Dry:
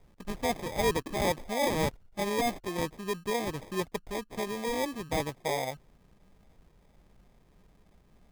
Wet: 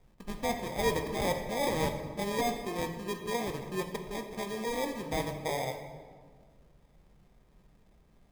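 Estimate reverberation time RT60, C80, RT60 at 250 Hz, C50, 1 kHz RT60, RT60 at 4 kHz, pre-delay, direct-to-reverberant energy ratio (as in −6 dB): 1.6 s, 9.0 dB, 2.0 s, 7.5 dB, 1.5 s, 1.1 s, 3 ms, 5.0 dB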